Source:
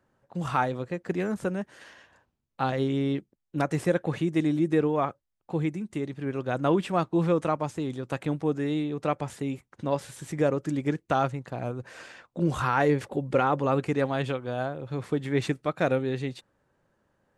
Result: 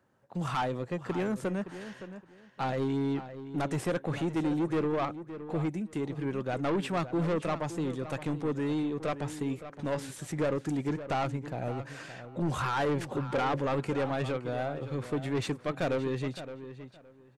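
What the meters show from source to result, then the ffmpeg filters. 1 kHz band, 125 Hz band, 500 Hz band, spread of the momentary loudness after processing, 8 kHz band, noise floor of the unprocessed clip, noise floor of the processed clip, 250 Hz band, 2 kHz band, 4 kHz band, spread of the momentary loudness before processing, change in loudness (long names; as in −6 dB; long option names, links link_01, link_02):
−4.5 dB, −3.5 dB, −4.5 dB, 11 LU, −0.5 dB, −79 dBFS, −55 dBFS, −3.5 dB, −4.0 dB, −1.5 dB, 10 LU, −4.0 dB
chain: -filter_complex "[0:a]highpass=71,asoftclip=type=tanh:threshold=-25dB,asplit=2[link_01][link_02];[link_02]adelay=567,lowpass=frequency=3400:poles=1,volume=-12dB,asplit=2[link_03][link_04];[link_04]adelay=567,lowpass=frequency=3400:poles=1,volume=0.21,asplit=2[link_05][link_06];[link_06]adelay=567,lowpass=frequency=3400:poles=1,volume=0.21[link_07];[link_01][link_03][link_05][link_07]amix=inputs=4:normalize=0"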